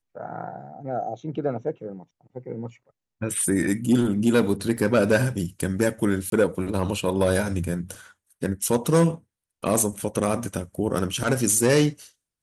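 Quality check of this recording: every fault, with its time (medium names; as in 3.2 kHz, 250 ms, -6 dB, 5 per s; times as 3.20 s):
4.77 s: dropout 4.8 ms
6.30–6.32 s: dropout 22 ms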